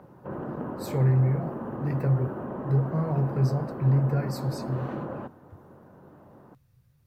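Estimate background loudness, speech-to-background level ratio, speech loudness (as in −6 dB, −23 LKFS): −35.5 LKFS, 8.5 dB, −27.0 LKFS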